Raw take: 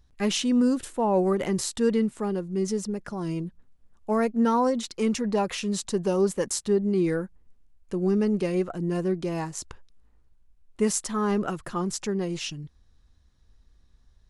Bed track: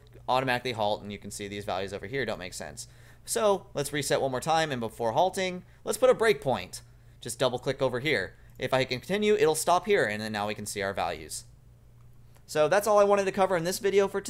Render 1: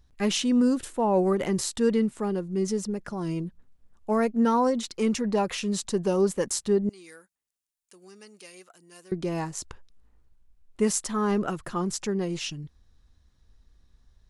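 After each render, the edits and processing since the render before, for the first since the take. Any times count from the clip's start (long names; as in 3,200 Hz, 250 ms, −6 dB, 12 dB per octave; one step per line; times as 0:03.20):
0:06.89–0:09.12: first difference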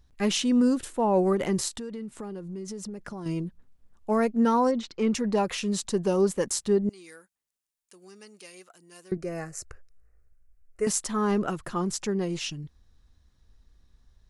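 0:01.68–0:03.26: downward compressor 8 to 1, threshold −33 dBFS
0:04.71–0:05.14: high-frequency loss of the air 140 metres
0:09.17–0:10.87: phaser with its sweep stopped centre 930 Hz, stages 6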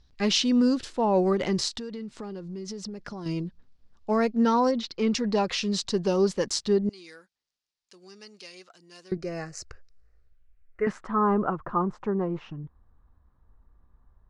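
low-pass filter sweep 4,800 Hz → 1,100 Hz, 0:10.13–0:11.19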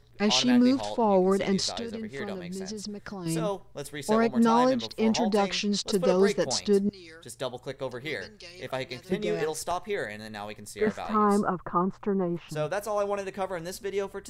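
mix in bed track −7 dB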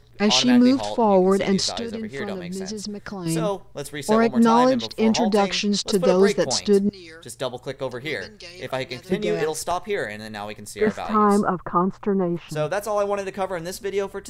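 level +5.5 dB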